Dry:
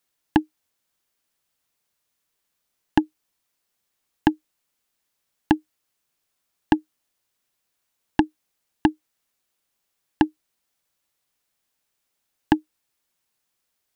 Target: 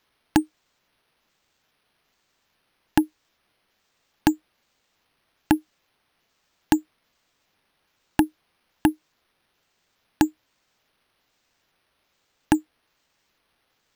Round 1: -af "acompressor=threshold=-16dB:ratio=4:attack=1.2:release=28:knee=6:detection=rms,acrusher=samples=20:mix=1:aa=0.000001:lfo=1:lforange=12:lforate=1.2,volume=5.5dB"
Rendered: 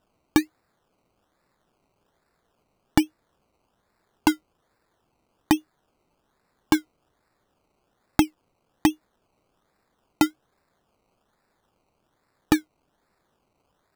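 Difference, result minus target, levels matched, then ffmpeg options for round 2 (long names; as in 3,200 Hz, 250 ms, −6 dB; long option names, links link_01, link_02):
sample-and-hold swept by an LFO: distortion +12 dB
-af "acompressor=threshold=-16dB:ratio=4:attack=1.2:release=28:knee=6:detection=rms,acrusher=samples=5:mix=1:aa=0.000001:lfo=1:lforange=3:lforate=1.2,volume=5.5dB"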